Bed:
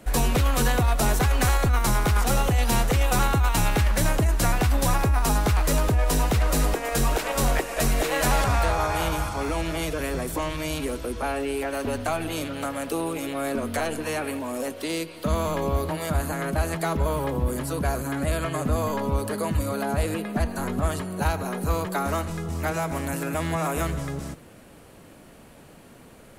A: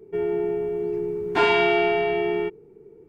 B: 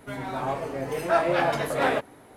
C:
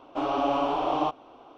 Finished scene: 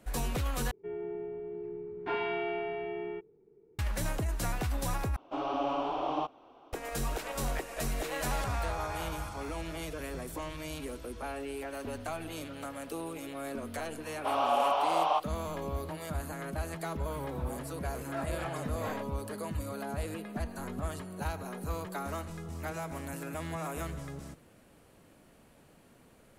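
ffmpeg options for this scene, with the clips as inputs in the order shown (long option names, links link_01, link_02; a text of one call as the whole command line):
ffmpeg -i bed.wav -i cue0.wav -i cue1.wav -i cue2.wav -filter_complex "[3:a]asplit=2[link_01][link_02];[0:a]volume=-11dB[link_03];[1:a]lowpass=2800[link_04];[link_02]highpass=frequency=580:width=0.5412,highpass=frequency=580:width=1.3066[link_05];[link_03]asplit=3[link_06][link_07][link_08];[link_06]atrim=end=0.714[link_09];[link_04]atrim=end=3.08,asetpts=PTS-STARTPTS,volume=-13.5dB[link_10];[link_07]atrim=start=3.786:end=5.164[link_11];[link_01]atrim=end=1.57,asetpts=PTS-STARTPTS,volume=-6.5dB[link_12];[link_08]atrim=start=6.726[link_13];[link_05]atrim=end=1.57,asetpts=PTS-STARTPTS,afade=type=in:duration=0.004:curve=hsin,afade=type=out:start_time=1.566:duration=0.004:curve=hsin,adelay=14090[link_14];[2:a]atrim=end=2.36,asetpts=PTS-STARTPTS,volume=-16.5dB,afade=type=in:duration=0.004:curve=hsin,afade=type=out:start_time=2.356:duration=0.004:curve=hsin,adelay=17030[link_15];[link_09][link_10]acrossfade=duration=0.004:curve1=hsin:curve2=hsin[link_16];[link_16][link_11]acrossfade=duration=0.004:curve1=hsin:curve2=hsin[link_17];[link_17][link_12]acrossfade=duration=0.004:curve1=hsin:curve2=hsin[link_18];[link_18][link_13]acrossfade=duration=0.004:curve1=hsin:curve2=hsin[link_19];[link_19][link_14][link_15]amix=inputs=3:normalize=0" out.wav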